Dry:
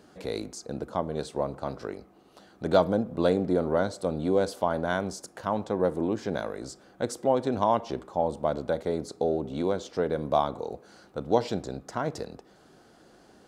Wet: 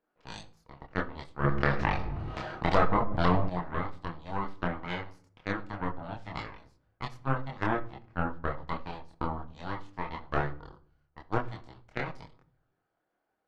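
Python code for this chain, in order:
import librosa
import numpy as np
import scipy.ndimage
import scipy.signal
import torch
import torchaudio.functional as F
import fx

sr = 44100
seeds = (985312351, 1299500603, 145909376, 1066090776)

p1 = fx.highpass(x, sr, hz=860.0, slope=6)
p2 = fx.env_lowpass(p1, sr, base_hz=1700.0, full_db=-26.0)
p3 = fx.cheby_harmonics(p2, sr, harmonics=(3, 4, 8), levels_db=(-10, -14, -28), full_scale_db=-12.5)
p4 = fx.rider(p3, sr, range_db=4, speed_s=0.5)
p5 = p3 + (p4 * librosa.db_to_amplitude(2.0))
p6 = fx.env_lowpass_down(p5, sr, base_hz=1500.0, full_db=-25.0)
p7 = fx.chorus_voices(p6, sr, voices=4, hz=0.25, base_ms=26, depth_ms=4.1, mix_pct=45)
p8 = fx.room_shoebox(p7, sr, seeds[0], volume_m3=720.0, walls='furnished', distance_m=0.59)
y = fx.env_flatten(p8, sr, amount_pct=70, at=(1.43, 3.48), fade=0.02)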